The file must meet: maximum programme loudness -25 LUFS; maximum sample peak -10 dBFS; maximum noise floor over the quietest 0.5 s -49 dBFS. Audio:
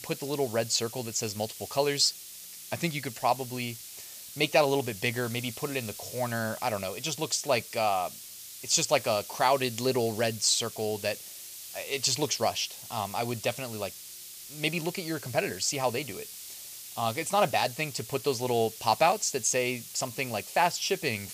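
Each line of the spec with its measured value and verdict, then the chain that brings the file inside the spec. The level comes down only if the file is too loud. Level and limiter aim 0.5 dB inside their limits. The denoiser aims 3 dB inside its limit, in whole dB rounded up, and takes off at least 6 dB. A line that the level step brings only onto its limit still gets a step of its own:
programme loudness -29.0 LUFS: OK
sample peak -8.0 dBFS: fail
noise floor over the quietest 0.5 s -45 dBFS: fail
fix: denoiser 7 dB, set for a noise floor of -45 dBFS; limiter -10.5 dBFS

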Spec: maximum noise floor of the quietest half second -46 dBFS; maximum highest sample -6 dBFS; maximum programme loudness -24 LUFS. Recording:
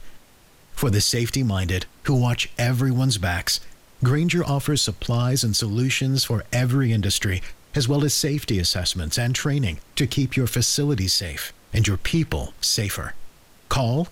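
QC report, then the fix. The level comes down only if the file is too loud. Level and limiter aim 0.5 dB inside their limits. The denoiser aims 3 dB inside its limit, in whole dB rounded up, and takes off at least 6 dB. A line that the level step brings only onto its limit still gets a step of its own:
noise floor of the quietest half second -52 dBFS: OK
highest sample -11.0 dBFS: OK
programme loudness -22.0 LUFS: fail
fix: gain -2.5 dB

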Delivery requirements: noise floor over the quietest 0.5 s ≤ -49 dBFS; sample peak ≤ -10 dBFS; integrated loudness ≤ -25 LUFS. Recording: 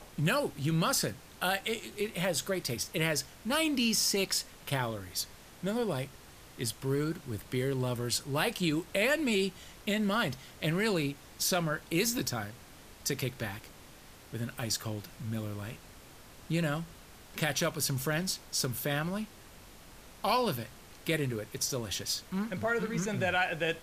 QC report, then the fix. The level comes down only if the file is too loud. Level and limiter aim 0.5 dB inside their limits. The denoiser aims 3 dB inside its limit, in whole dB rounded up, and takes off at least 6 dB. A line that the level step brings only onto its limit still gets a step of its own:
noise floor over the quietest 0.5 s -53 dBFS: OK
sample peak -12.5 dBFS: OK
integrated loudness -32.0 LUFS: OK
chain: none

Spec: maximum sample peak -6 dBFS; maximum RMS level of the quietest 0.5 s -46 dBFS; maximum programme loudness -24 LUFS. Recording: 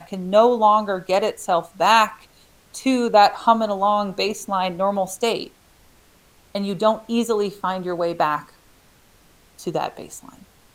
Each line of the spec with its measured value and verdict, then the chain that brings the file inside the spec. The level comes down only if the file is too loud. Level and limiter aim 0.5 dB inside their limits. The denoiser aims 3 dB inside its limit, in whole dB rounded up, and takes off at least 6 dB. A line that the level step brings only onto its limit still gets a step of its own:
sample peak -2.5 dBFS: fail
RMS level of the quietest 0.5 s -54 dBFS: OK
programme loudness -20.5 LUFS: fail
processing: gain -4 dB

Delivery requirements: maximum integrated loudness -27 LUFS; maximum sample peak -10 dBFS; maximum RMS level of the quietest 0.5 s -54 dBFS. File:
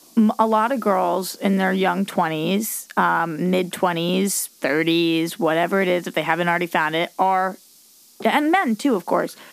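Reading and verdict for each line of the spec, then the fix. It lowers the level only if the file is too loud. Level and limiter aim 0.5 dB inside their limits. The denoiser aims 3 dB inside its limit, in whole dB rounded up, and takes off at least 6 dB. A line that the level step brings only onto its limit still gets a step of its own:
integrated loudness -20.5 LUFS: fail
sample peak -4.0 dBFS: fail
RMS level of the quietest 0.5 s -51 dBFS: fail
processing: gain -7 dB

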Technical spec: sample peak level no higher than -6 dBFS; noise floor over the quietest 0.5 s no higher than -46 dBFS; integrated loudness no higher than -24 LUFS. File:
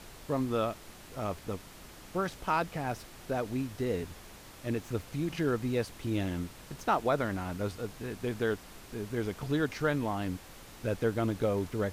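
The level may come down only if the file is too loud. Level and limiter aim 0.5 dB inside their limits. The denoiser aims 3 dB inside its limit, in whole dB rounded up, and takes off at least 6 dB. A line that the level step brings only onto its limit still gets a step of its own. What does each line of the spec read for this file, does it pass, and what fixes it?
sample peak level -16.0 dBFS: OK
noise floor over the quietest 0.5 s -50 dBFS: OK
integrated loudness -33.5 LUFS: OK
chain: none

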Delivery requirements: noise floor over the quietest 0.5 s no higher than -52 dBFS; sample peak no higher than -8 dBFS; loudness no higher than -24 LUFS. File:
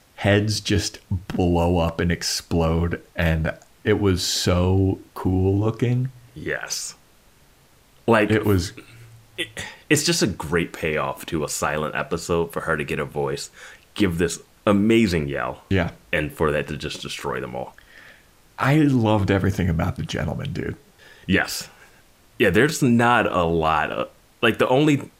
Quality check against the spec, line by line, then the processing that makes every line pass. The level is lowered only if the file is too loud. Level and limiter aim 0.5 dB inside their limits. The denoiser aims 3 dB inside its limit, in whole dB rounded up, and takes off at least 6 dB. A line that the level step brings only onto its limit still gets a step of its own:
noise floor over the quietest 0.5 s -55 dBFS: OK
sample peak -5.0 dBFS: fail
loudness -22.0 LUFS: fail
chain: gain -2.5 dB; limiter -8.5 dBFS

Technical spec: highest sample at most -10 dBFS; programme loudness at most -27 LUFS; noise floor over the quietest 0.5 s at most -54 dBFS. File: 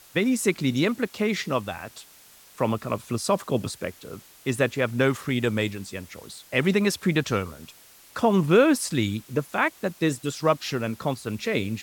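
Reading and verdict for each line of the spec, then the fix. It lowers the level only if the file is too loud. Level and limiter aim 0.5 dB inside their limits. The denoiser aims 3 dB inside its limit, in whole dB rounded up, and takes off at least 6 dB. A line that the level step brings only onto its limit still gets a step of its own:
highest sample -7.0 dBFS: fail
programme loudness -25.0 LUFS: fail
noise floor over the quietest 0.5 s -52 dBFS: fail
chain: gain -2.5 dB; limiter -10.5 dBFS

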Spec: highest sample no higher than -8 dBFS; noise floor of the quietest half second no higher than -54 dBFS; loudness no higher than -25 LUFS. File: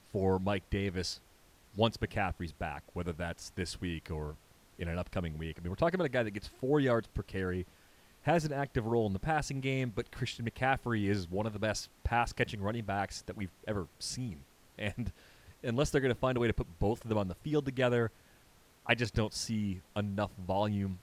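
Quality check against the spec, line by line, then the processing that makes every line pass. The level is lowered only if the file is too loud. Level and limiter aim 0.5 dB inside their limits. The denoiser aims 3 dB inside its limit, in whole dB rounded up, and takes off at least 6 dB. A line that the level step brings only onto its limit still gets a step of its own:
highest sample -11.5 dBFS: OK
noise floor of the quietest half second -63 dBFS: OK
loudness -34.5 LUFS: OK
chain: none

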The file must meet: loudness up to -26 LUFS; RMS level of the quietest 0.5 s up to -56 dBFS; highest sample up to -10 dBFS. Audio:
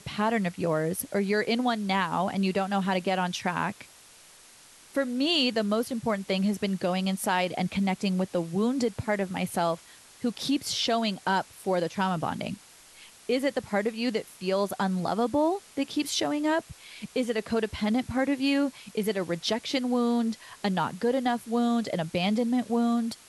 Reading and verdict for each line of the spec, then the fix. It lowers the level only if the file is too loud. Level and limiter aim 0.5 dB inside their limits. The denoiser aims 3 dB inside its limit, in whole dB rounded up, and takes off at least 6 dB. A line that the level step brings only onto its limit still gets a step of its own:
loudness -28.0 LUFS: OK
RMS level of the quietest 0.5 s -53 dBFS: fail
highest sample -12.5 dBFS: OK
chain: denoiser 6 dB, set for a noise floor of -53 dBFS

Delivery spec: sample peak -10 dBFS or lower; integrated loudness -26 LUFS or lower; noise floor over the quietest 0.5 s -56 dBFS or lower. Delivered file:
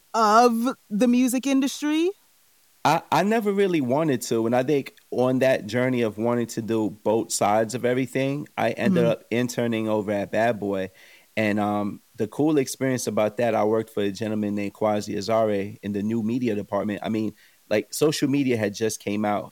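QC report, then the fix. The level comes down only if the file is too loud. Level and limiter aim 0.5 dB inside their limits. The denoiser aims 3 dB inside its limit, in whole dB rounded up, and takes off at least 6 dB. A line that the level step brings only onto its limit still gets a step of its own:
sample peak -5.0 dBFS: fail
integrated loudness -24.0 LUFS: fail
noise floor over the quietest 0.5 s -60 dBFS: OK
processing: gain -2.5 dB; limiter -10.5 dBFS

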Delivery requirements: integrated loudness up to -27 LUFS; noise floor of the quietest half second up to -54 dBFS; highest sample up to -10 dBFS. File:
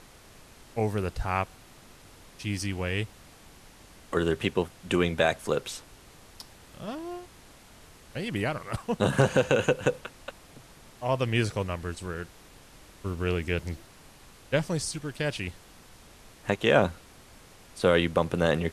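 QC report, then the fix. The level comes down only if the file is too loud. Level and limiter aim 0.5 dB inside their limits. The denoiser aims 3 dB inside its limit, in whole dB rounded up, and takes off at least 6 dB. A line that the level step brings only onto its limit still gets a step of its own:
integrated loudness -28.5 LUFS: OK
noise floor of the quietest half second -52 dBFS: fail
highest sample -7.5 dBFS: fail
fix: denoiser 6 dB, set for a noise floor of -52 dBFS; limiter -10.5 dBFS

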